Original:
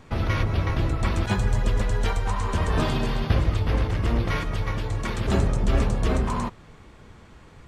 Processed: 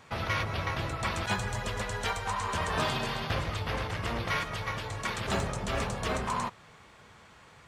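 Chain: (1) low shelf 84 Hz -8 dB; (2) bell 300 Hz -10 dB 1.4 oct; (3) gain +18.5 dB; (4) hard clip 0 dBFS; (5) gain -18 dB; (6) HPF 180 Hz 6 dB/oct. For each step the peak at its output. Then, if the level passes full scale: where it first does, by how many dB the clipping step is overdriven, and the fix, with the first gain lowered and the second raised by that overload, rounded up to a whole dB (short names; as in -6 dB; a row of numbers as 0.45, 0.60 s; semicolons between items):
-10.5, -13.5, +5.0, 0.0, -18.0, -16.5 dBFS; step 3, 5.0 dB; step 3 +13.5 dB, step 5 -13 dB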